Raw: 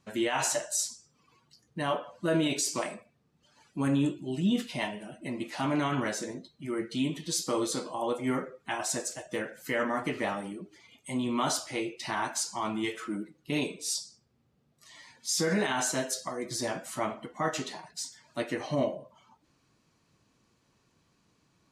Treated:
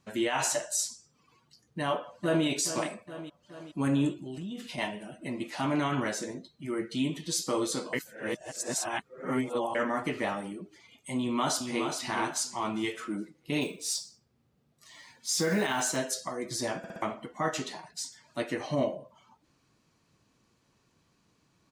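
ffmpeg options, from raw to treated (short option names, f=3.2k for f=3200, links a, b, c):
-filter_complex "[0:a]asplit=2[a][b];[b]afade=t=in:st=1.81:d=0.01,afade=t=out:st=2.45:d=0.01,aecho=0:1:420|840|1260|1680|2100|2520|2940:0.281838|0.169103|0.101462|0.0608771|0.0365262|0.0219157|0.0131494[c];[a][c]amix=inputs=2:normalize=0,asettb=1/sr,asplit=3[d][e][f];[d]atrim=end=4.184[g];[e]atrim=start=4.18:end=4.78,asetpts=PTS-STARTPTS,afade=t=in:d=0.004:c=qsin,afade=t=out:st=0.596:d=0.004:c=qsin,acompressor=threshold=-36dB:ratio=6:attack=3.2:release=140:knee=1:detection=peak[h];[f]atrim=start=4.776[i];[g][h]acrossfade=d=0.004:c1=hsin:c2=qsin[j];[j][i]acrossfade=d=0.004:c1=qsin:c2=hsin,asplit=2[k][l];[l]afade=t=in:st=11.18:d=0.01,afade=t=out:st=11.88:d=0.01,aecho=0:1:420|840|1260|1680:0.501187|0.150356|0.0451069|0.0135321[m];[k][m]amix=inputs=2:normalize=0,asettb=1/sr,asplit=3[n][o][p];[n]atrim=end=13.614[q];[o]atrim=start=13.61:end=15.97,asetpts=PTS-STARTPTS,afade=t=in:d=0.004:c=qsin,afade=t=out:st=2.356:d=0.004:c=qsin,acrusher=bits=6:mode=log:mix=0:aa=0.000001[r];[p]atrim=start=15.966[s];[q][r]acrossfade=d=0.004:c1=hsin:c2=qsin[t];[t][s]acrossfade=d=0.004:c1=qsin:c2=hsin,asplit=7[u][v][w][x][y][z][aa];[u]atrim=end=7.932[ab];[v]atrim=start=7.928:end=9.752,asetpts=PTS-STARTPTS,areverse[ac];[w]atrim=start=9.748:end=16.842[ad];[x]atrim=start=16.778:end=16.842[ae];[y]atrim=start=16.778:end=16.842[af];[z]atrim=start=16.778:end=16.842[ag];[aa]atrim=start=17.018[ah];[ab][ac]acrossfade=d=0.004:c1=hsin:c2=hsin[ai];[ai][ad]acrossfade=d=0.004:c1=hsin:c2=hsin[aj];[aj][ae]acrossfade=d=0.004:c1=hsin:c2=hsin[ak];[ak][af]acrossfade=d=0.004:c1=hsin:c2=hsin[al];[al][ag]acrossfade=d=0.004:c1=hsin:c2=hsin[am];[am][ah]acrossfade=d=0.004:c1=hsin:c2=hsin"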